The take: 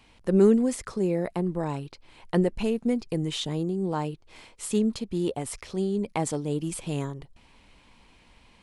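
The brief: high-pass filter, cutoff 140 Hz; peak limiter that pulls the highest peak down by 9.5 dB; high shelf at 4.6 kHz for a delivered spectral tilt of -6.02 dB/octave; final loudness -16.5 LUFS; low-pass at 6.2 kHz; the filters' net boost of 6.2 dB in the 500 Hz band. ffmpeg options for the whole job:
-af "highpass=140,lowpass=6200,equalizer=f=500:t=o:g=8,highshelf=f=4600:g=7,volume=3.16,alimiter=limit=0.531:level=0:latency=1"

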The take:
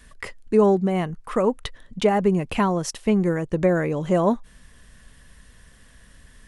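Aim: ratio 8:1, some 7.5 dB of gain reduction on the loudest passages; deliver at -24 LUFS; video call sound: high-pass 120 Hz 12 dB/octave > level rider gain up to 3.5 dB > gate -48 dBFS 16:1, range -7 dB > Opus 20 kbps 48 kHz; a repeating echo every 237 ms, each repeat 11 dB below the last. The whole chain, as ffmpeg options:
-af "acompressor=threshold=0.1:ratio=8,highpass=120,aecho=1:1:237|474|711:0.282|0.0789|0.0221,dynaudnorm=m=1.5,agate=range=0.447:threshold=0.00398:ratio=16,volume=1.41" -ar 48000 -c:a libopus -b:a 20k

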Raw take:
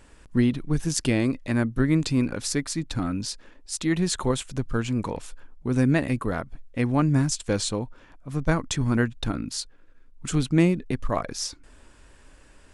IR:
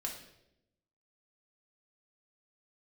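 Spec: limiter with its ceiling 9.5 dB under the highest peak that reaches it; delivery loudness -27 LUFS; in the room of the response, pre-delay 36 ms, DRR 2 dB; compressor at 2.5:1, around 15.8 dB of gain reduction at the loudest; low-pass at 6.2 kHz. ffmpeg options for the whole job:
-filter_complex "[0:a]lowpass=6200,acompressor=threshold=0.00891:ratio=2.5,alimiter=level_in=2.11:limit=0.0631:level=0:latency=1,volume=0.473,asplit=2[s0][s1];[1:a]atrim=start_sample=2205,adelay=36[s2];[s1][s2]afir=irnorm=-1:irlink=0,volume=0.75[s3];[s0][s3]amix=inputs=2:normalize=0,volume=4.47"

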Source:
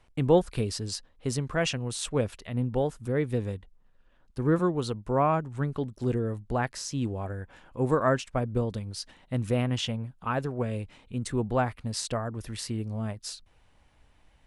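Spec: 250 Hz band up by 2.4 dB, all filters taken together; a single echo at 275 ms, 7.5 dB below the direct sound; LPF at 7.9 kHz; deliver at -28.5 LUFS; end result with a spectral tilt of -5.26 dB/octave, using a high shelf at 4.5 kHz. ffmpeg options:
-af "lowpass=7900,equalizer=f=250:t=o:g=3,highshelf=f=4500:g=9,aecho=1:1:275:0.422,volume=0.891"

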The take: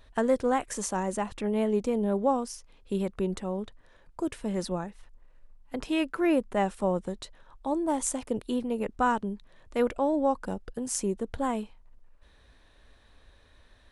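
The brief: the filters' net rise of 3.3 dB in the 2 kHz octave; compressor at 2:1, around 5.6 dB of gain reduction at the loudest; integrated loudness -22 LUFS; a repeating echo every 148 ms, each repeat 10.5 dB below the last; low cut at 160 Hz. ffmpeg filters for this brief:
-af "highpass=160,equalizer=f=2000:t=o:g=4.5,acompressor=threshold=0.0316:ratio=2,aecho=1:1:148|296|444:0.299|0.0896|0.0269,volume=3.76"

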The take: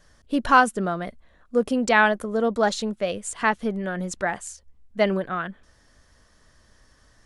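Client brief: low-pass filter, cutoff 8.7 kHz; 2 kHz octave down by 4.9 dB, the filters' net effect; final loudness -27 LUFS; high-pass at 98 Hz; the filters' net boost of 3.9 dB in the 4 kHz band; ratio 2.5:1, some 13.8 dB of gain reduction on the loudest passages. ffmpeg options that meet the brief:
-af "highpass=98,lowpass=8700,equalizer=f=2000:t=o:g=-8.5,equalizer=f=4000:t=o:g=8,acompressor=threshold=0.02:ratio=2.5,volume=2.37"

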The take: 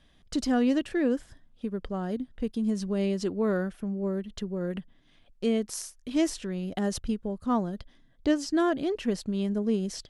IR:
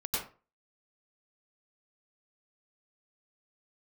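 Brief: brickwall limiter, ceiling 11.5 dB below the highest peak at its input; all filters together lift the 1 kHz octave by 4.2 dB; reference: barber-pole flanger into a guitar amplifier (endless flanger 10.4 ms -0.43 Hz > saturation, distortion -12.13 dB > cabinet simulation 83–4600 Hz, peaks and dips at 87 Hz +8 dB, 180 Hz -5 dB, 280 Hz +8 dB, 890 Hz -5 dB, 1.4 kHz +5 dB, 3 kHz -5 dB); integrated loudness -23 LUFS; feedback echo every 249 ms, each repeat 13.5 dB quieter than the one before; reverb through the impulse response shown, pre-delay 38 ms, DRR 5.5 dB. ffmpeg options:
-filter_complex "[0:a]equalizer=f=1000:t=o:g=6.5,alimiter=limit=0.0794:level=0:latency=1,aecho=1:1:249|498:0.211|0.0444,asplit=2[s0][s1];[1:a]atrim=start_sample=2205,adelay=38[s2];[s1][s2]afir=irnorm=-1:irlink=0,volume=0.299[s3];[s0][s3]amix=inputs=2:normalize=0,asplit=2[s4][s5];[s5]adelay=10.4,afreqshift=-0.43[s6];[s4][s6]amix=inputs=2:normalize=1,asoftclip=threshold=0.0316,highpass=83,equalizer=f=87:t=q:w=4:g=8,equalizer=f=180:t=q:w=4:g=-5,equalizer=f=280:t=q:w=4:g=8,equalizer=f=890:t=q:w=4:g=-5,equalizer=f=1400:t=q:w=4:g=5,equalizer=f=3000:t=q:w=4:g=-5,lowpass=f=4600:w=0.5412,lowpass=f=4600:w=1.3066,volume=4.47"

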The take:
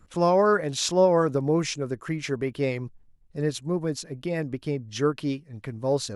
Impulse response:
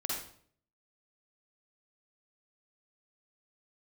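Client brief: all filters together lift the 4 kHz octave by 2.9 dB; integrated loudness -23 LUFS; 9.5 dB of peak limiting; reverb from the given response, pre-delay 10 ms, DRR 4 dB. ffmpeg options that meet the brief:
-filter_complex "[0:a]equalizer=f=4000:t=o:g=3.5,alimiter=limit=0.158:level=0:latency=1,asplit=2[s0][s1];[1:a]atrim=start_sample=2205,adelay=10[s2];[s1][s2]afir=irnorm=-1:irlink=0,volume=0.422[s3];[s0][s3]amix=inputs=2:normalize=0,volume=1.5"

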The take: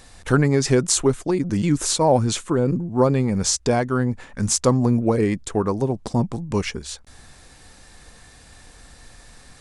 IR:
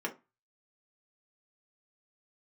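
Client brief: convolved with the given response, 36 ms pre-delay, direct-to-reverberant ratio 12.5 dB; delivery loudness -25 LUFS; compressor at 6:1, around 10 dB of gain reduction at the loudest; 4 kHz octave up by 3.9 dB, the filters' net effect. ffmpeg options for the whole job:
-filter_complex "[0:a]equalizer=f=4000:t=o:g=5,acompressor=threshold=0.0708:ratio=6,asplit=2[s0][s1];[1:a]atrim=start_sample=2205,adelay=36[s2];[s1][s2]afir=irnorm=-1:irlink=0,volume=0.141[s3];[s0][s3]amix=inputs=2:normalize=0,volume=1.33"

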